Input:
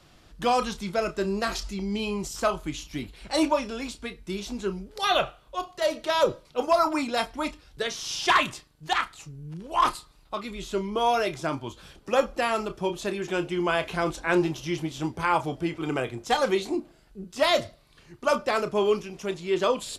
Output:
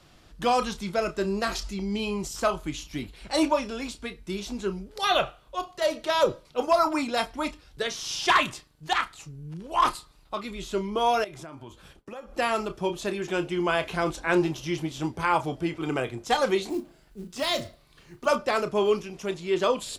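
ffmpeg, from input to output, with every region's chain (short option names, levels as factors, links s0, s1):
-filter_complex "[0:a]asettb=1/sr,asplit=3[s0][s1][s2];[s0]atrim=end=11.244[s3];[s1]atrim=start=11.24:end=12.35,asetpts=PTS-STARTPTS,afade=t=in:d=0.004:c=qsin,afade=t=out:st=1.106:d=0.004:c=qsin,agate=range=0.0224:threshold=0.00447:ratio=3:release=100:detection=peak,equalizer=f=4800:t=o:w=1.2:g=-5,acompressor=threshold=0.0126:ratio=6:attack=3.2:release=140:knee=1:detection=peak[s4];[s2]atrim=start=12.346[s5];[s3][s4]acrossfade=d=0.004:c1=hsin:c2=qsin[s6];[s6][s5]acrossfade=d=0.004:c1=qsin:c2=hsin,asettb=1/sr,asplit=3[s7][s8][s9];[s7]atrim=end=16.694[s10];[s8]atrim=start=16.69:end=18.26,asetpts=PTS-STARTPTS,afade=t=in:d=0.004:c=qsin,afade=t=out:st=1.566:d=0.004:c=qsin,acrossover=split=300|3000[s11][s12][s13];[s12]acompressor=threshold=0.01:ratio=1.5:attack=3.2:release=140:knee=2.83:detection=peak[s14];[s11][s14][s13]amix=inputs=3:normalize=0,acrusher=bits=6:mode=log:mix=0:aa=0.000001,asplit=2[s15][s16];[s16]adelay=34,volume=0.251[s17];[s15][s17]amix=inputs=2:normalize=0,atrim=end_sample=69237[s18];[s9]atrim=start=18.256[s19];[s10][s18]acrossfade=d=0.004:c1=hsin:c2=qsin[s20];[s20][s19]acrossfade=d=0.004:c1=qsin:c2=hsin"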